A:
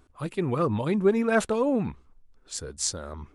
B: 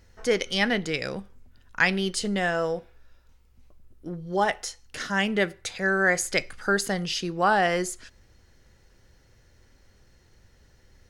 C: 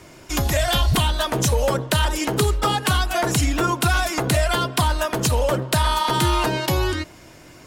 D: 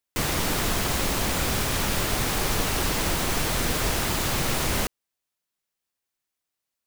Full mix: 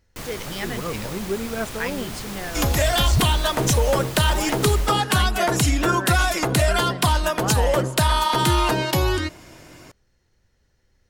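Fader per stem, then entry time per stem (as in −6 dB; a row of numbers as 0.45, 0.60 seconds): −5.5, −8.0, +0.5, −9.0 decibels; 0.25, 0.00, 2.25, 0.00 seconds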